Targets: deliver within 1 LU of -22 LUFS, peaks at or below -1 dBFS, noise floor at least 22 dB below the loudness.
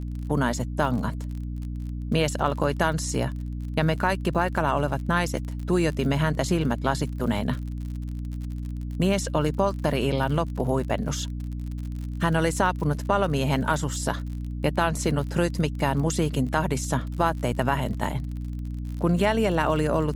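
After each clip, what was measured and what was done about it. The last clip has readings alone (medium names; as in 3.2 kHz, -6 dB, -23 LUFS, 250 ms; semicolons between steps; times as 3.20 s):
tick rate 47 per s; hum 60 Hz; highest harmonic 300 Hz; hum level -29 dBFS; loudness -26.0 LUFS; peak level -8.0 dBFS; loudness target -22.0 LUFS
-> de-click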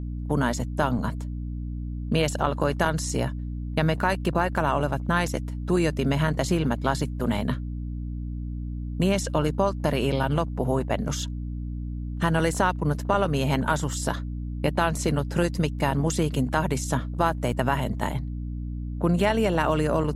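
tick rate 0.050 per s; hum 60 Hz; highest harmonic 300 Hz; hum level -29 dBFS
-> de-hum 60 Hz, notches 5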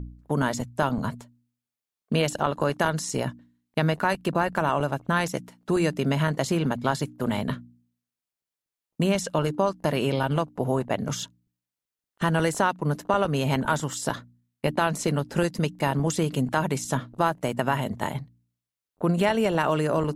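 hum not found; loudness -26.0 LUFS; peak level -8.5 dBFS; loudness target -22.0 LUFS
-> trim +4 dB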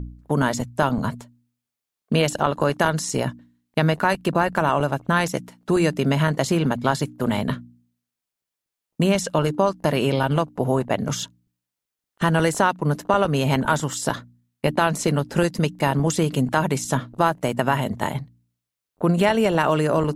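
loudness -22.0 LUFS; peak level -4.5 dBFS; noise floor -86 dBFS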